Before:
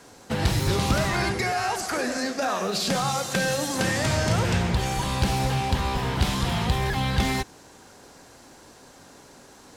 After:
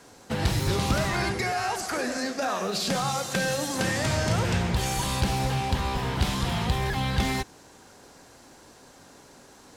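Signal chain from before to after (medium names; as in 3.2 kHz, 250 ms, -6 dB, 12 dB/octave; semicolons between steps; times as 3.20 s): 4.76–5.21 s: treble shelf 4.9 kHz +8 dB; trim -2 dB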